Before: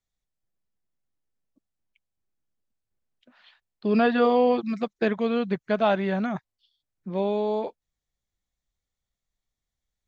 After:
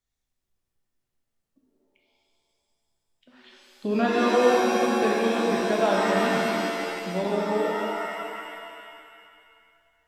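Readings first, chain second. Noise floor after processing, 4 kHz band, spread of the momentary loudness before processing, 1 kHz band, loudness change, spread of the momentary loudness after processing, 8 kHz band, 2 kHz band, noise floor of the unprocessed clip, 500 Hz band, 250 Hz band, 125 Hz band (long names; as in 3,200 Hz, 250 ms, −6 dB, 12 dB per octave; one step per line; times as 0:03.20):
−82 dBFS, +7.0 dB, 12 LU, +3.5 dB, +0.5 dB, 15 LU, can't be measured, +5.5 dB, below −85 dBFS, +1.5 dB, 0.0 dB, −0.5 dB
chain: in parallel at +3 dB: downward compressor, threshold −29 dBFS, peak gain reduction 12.5 dB
on the sum: reverb with rising layers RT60 2.2 s, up +7 semitones, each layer −2 dB, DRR −2 dB
level −7.5 dB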